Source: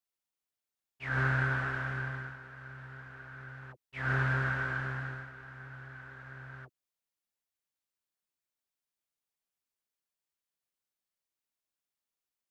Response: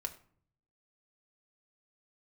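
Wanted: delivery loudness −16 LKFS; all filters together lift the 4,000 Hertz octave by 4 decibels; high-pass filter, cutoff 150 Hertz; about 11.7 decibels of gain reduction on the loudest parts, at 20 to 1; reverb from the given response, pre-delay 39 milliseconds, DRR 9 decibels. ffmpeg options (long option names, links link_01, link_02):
-filter_complex "[0:a]highpass=150,equalizer=frequency=4000:width_type=o:gain=5.5,acompressor=threshold=-38dB:ratio=20,asplit=2[link_01][link_02];[1:a]atrim=start_sample=2205,adelay=39[link_03];[link_02][link_03]afir=irnorm=-1:irlink=0,volume=-8.5dB[link_04];[link_01][link_04]amix=inputs=2:normalize=0,volume=27.5dB"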